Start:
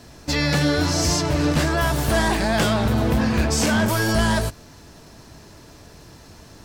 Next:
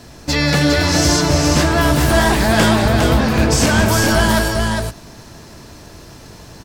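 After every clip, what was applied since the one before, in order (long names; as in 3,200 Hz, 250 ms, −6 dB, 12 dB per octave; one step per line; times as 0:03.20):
multi-tap delay 186/407 ms −11/−4 dB
on a send at −23 dB: convolution reverb RT60 1.8 s, pre-delay 6 ms
on the sum: level +5 dB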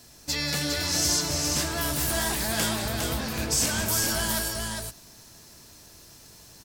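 first-order pre-emphasis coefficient 0.8
level −3 dB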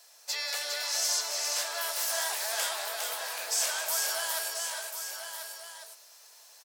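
inverse Chebyshev high-pass filter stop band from 280 Hz, stop band 40 dB
single-tap delay 1,041 ms −8 dB
level −4 dB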